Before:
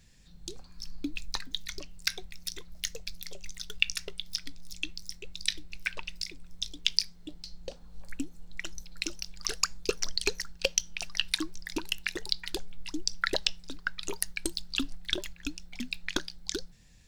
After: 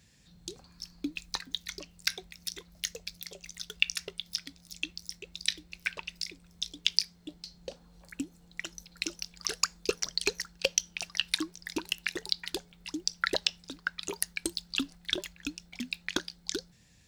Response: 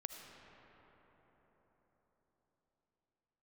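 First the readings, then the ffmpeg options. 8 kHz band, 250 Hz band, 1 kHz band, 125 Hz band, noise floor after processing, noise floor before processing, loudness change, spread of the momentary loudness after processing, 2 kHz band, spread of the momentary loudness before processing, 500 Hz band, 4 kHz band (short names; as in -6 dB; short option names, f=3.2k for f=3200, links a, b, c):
0.0 dB, 0.0 dB, 0.0 dB, -3.5 dB, -60 dBFS, -54 dBFS, 0.0 dB, 14 LU, 0.0 dB, 14 LU, 0.0 dB, 0.0 dB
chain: -af "highpass=72"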